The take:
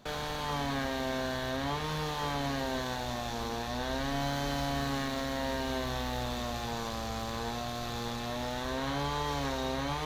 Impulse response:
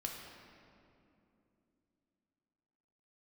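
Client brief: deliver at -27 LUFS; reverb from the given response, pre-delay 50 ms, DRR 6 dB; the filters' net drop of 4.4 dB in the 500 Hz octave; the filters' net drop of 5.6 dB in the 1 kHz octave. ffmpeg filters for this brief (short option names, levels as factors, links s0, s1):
-filter_complex "[0:a]equalizer=f=500:t=o:g=-3.5,equalizer=f=1000:t=o:g=-6,asplit=2[s0][s1];[1:a]atrim=start_sample=2205,adelay=50[s2];[s1][s2]afir=irnorm=-1:irlink=0,volume=0.501[s3];[s0][s3]amix=inputs=2:normalize=0,volume=2.51"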